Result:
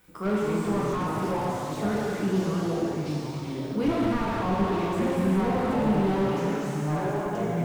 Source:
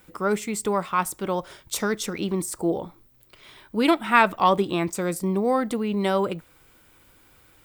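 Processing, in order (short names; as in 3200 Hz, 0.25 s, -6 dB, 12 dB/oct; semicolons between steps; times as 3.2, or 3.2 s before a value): 2–2.63 LPF 2100 Hz 12 dB/oct; plate-style reverb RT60 2.1 s, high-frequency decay 0.95×, pre-delay 0 ms, DRR -5 dB; echoes that change speed 0.157 s, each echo -4 st, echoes 3, each echo -6 dB; slew limiter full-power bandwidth 75 Hz; gain -6.5 dB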